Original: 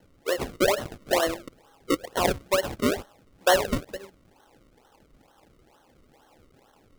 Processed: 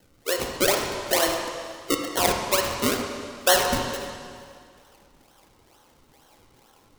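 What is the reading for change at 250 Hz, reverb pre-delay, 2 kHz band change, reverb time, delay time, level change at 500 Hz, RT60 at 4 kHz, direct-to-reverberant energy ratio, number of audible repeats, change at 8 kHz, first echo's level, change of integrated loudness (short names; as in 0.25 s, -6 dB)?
0.0 dB, 6 ms, +3.0 dB, 2.1 s, none, 0.0 dB, 2.0 s, 1.0 dB, none, +8.0 dB, none, +2.5 dB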